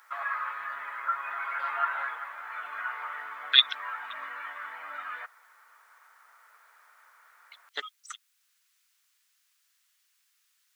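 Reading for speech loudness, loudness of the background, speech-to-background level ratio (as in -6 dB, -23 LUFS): -25.0 LUFS, -34.5 LUFS, 9.5 dB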